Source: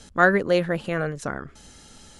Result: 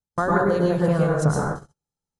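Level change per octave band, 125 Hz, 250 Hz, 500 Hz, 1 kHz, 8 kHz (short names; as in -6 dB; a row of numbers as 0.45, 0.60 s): +9.0, +4.5, +1.5, +1.5, +5.5 dB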